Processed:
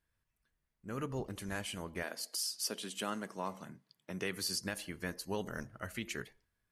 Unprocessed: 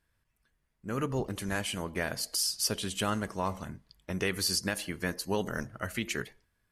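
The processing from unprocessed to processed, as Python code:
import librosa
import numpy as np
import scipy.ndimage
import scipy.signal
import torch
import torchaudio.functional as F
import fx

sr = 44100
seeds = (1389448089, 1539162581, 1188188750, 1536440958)

y = fx.highpass(x, sr, hz=fx.line((2.02, 260.0), (4.6, 100.0)), slope=24, at=(2.02, 4.6), fade=0.02)
y = F.gain(torch.from_numpy(y), -7.0).numpy()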